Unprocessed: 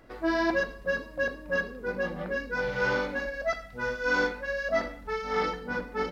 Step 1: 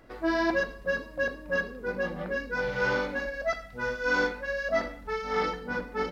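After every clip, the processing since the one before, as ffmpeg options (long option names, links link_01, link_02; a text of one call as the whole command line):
ffmpeg -i in.wav -af anull out.wav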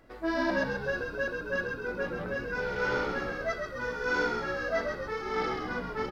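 ffmpeg -i in.wav -filter_complex "[0:a]asplit=9[link_01][link_02][link_03][link_04][link_05][link_06][link_07][link_08][link_09];[link_02]adelay=132,afreqshift=-64,volume=-5dB[link_10];[link_03]adelay=264,afreqshift=-128,volume=-9.4dB[link_11];[link_04]adelay=396,afreqshift=-192,volume=-13.9dB[link_12];[link_05]adelay=528,afreqshift=-256,volume=-18.3dB[link_13];[link_06]adelay=660,afreqshift=-320,volume=-22.7dB[link_14];[link_07]adelay=792,afreqshift=-384,volume=-27.2dB[link_15];[link_08]adelay=924,afreqshift=-448,volume=-31.6dB[link_16];[link_09]adelay=1056,afreqshift=-512,volume=-36.1dB[link_17];[link_01][link_10][link_11][link_12][link_13][link_14][link_15][link_16][link_17]amix=inputs=9:normalize=0,volume=-3.5dB" out.wav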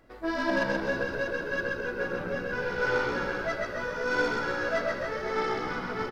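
ffmpeg -i in.wav -af "aeval=exprs='0.141*(cos(1*acos(clip(val(0)/0.141,-1,1)))-cos(1*PI/2))+0.0158*(cos(3*acos(clip(val(0)/0.141,-1,1)))-cos(3*PI/2))+0.00224*(cos(8*acos(clip(val(0)/0.141,-1,1)))-cos(8*PI/2))':channel_layout=same,aecho=1:1:130|299|518.7|804.3|1176:0.631|0.398|0.251|0.158|0.1,volume=2.5dB" out.wav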